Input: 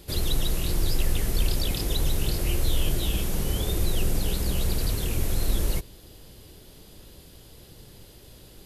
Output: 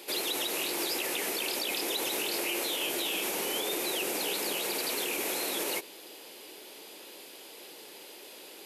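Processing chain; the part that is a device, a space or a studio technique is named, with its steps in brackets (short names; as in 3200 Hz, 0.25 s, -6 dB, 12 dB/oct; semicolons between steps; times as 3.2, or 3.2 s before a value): laptop speaker (HPF 320 Hz 24 dB/oct; bell 880 Hz +5 dB 0.3 oct; bell 2400 Hz +7.5 dB 0.51 oct; limiter -26.5 dBFS, peak gain reduction 8 dB); gain +4 dB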